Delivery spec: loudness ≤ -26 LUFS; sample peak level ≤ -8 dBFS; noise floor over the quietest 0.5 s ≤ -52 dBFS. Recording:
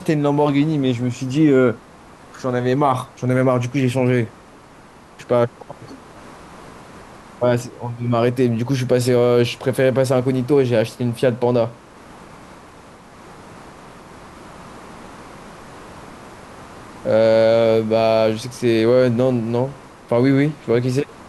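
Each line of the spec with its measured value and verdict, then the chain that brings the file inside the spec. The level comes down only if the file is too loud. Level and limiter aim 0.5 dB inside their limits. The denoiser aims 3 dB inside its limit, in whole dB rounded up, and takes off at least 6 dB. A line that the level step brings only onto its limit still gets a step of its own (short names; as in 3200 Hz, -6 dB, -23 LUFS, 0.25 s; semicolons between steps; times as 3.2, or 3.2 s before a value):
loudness -18.0 LUFS: fail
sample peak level -5.5 dBFS: fail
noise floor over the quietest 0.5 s -44 dBFS: fail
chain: gain -8.5 dB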